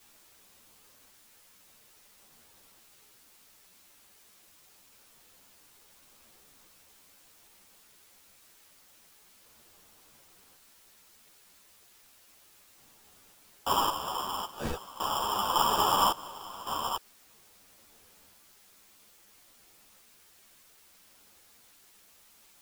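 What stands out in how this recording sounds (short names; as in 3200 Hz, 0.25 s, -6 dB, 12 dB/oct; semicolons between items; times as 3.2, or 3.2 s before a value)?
aliases and images of a low sample rate 2100 Hz, jitter 0%; random-step tremolo 1.8 Hz, depth 95%; a quantiser's noise floor 12-bit, dither triangular; a shimmering, thickened sound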